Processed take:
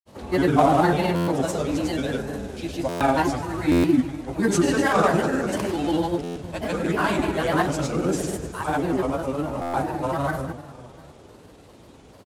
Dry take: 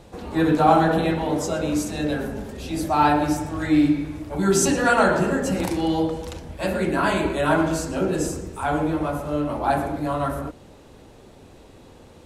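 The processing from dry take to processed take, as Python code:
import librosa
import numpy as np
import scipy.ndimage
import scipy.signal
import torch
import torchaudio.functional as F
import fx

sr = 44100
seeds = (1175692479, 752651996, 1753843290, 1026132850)

y = fx.cvsd(x, sr, bps=64000)
y = scipy.signal.sosfilt(scipy.signal.butter(2, 51.0, 'highpass', fs=sr, output='sos'), y)
y = fx.rev_schroeder(y, sr, rt60_s=2.9, comb_ms=38, drr_db=11.0)
y = fx.granulator(y, sr, seeds[0], grain_ms=100.0, per_s=20.0, spray_ms=100.0, spread_st=3)
y = fx.buffer_glitch(y, sr, at_s=(1.15, 2.88, 3.71, 6.23, 9.61), block=512, repeats=10)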